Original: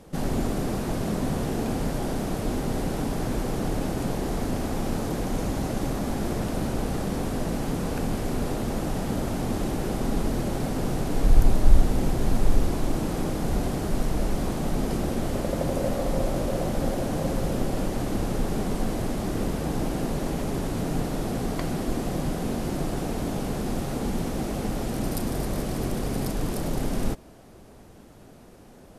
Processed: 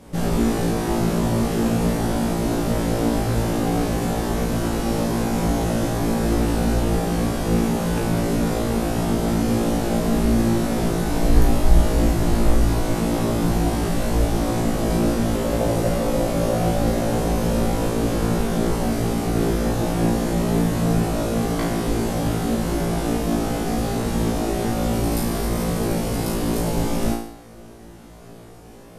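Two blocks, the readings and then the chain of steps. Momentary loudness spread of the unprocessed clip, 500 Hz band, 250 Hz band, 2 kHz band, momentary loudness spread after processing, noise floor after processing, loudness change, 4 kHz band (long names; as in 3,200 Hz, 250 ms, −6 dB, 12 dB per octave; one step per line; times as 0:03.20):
3 LU, +6.5 dB, +7.0 dB, +7.0 dB, 3 LU, −41 dBFS, +6.5 dB, +7.0 dB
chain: flutter between parallel walls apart 3 metres, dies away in 0.6 s
level +2 dB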